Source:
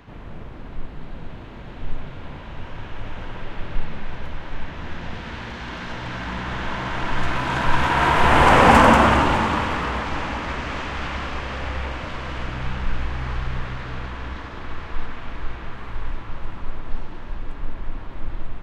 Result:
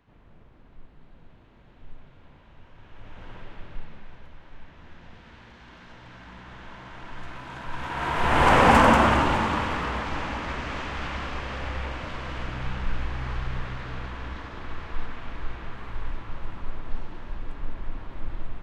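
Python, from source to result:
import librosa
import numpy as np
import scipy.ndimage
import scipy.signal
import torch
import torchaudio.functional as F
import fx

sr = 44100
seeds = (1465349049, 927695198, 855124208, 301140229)

y = fx.gain(x, sr, db=fx.line((2.75, -17.0), (3.32, -9.0), (4.28, -16.0), (7.68, -16.0), (8.48, -4.0)))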